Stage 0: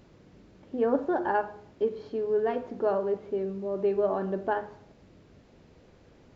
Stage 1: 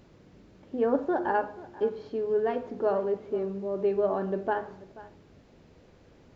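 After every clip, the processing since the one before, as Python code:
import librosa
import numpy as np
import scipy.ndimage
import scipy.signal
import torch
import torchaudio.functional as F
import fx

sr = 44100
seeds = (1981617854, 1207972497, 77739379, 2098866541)

y = x + 10.0 ** (-18.5 / 20.0) * np.pad(x, (int(484 * sr / 1000.0), 0))[:len(x)]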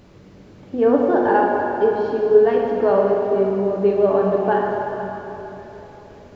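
y = fx.rev_plate(x, sr, seeds[0], rt60_s=3.6, hf_ratio=0.75, predelay_ms=0, drr_db=-1.0)
y = F.gain(torch.from_numpy(y), 7.0).numpy()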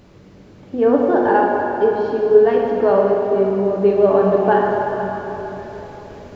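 y = fx.rider(x, sr, range_db=4, speed_s=2.0)
y = F.gain(torch.from_numpy(y), 2.0).numpy()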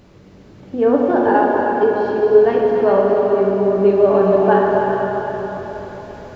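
y = fx.echo_heads(x, sr, ms=137, heads='second and third', feedback_pct=44, wet_db=-8.5)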